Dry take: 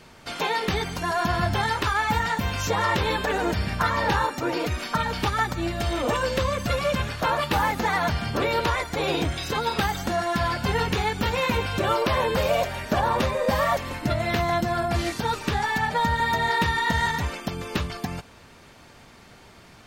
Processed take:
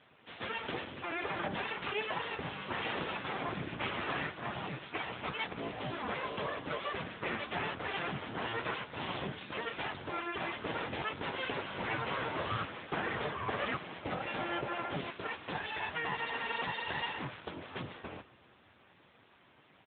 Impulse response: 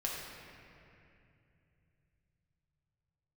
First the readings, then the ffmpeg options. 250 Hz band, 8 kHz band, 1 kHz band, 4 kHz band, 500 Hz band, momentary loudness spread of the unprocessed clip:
-13.5 dB, under -40 dB, -14.0 dB, -11.0 dB, -14.0 dB, 4 LU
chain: -filter_complex "[0:a]aecho=1:1:89|178|267|356:0.0631|0.0353|0.0198|0.0111,aeval=exprs='abs(val(0))':c=same,asplit=2[s0][s1];[1:a]atrim=start_sample=2205,asetrate=31752,aresample=44100[s2];[s1][s2]afir=irnorm=-1:irlink=0,volume=0.0631[s3];[s0][s3]amix=inputs=2:normalize=0,volume=0.447" -ar 8000 -c:a libopencore_amrnb -b:a 10200

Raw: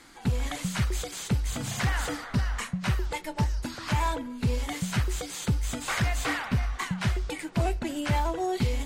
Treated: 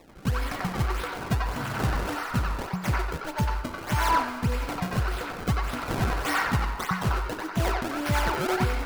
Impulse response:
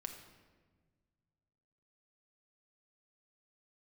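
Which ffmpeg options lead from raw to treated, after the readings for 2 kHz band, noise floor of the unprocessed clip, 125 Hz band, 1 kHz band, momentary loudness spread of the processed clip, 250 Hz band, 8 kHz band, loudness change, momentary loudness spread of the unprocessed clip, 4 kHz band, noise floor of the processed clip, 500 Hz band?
+3.0 dB, -42 dBFS, 0.0 dB, +5.5 dB, 6 LU, +0.5 dB, -4.0 dB, +1.5 dB, 4 LU, 0.0 dB, -38 dBFS, +2.5 dB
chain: -filter_complex "[0:a]acrusher=samples=28:mix=1:aa=0.000001:lfo=1:lforange=44.8:lforate=1.7,asplit=2[s0][s1];[s1]highpass=f=450:w=0.5412,highpass=f=450:w=1.3066,equalizer=f=550:t=q:w=4:g=-9,equalizer=f=990:t=q:w=4:g=6,equalizer=f=1400:t=q:w=4:g=8,equalizer=f=3400:t=q:w=4:g=-7,lowpass=f=4700:w=0.5412,lowpass=f=4700:w=1.3066[s2];[1:a]atrim=start_sample=2205,adelay=91[s3];[s2][s3]afir=irnorm=-1:irlink=0,volume=1.58[s4];[s0][s4]amix=inputs=2:normalize=0"

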